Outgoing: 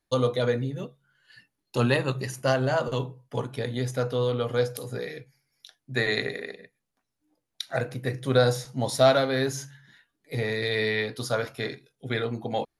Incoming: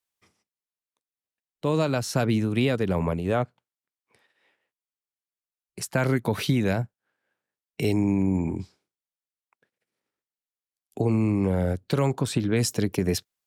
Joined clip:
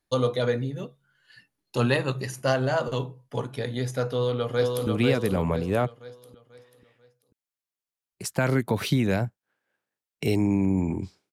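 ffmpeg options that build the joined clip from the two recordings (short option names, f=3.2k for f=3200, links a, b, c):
-filter_complex "[0:a]apad=whole_dur=11.32,atrim=end=11.32,atrim=end=4.872[a];[1:a]atrim=start=2.438:end=8.89[b];[a][b]acrossfade=d=0.004:c1=hsin:c2=hsin,asplit=2[c][d];[d]afade=t=in:st=4.1:d=0.01,afade=t=out:st=4.87:d=0.01,aecho=0:1:490|980|1470|1960|2450:0.707946|0.283178|0.113271|0.0453085|0.0181234[e];[c][e]amix=inputs=2:normalize=0"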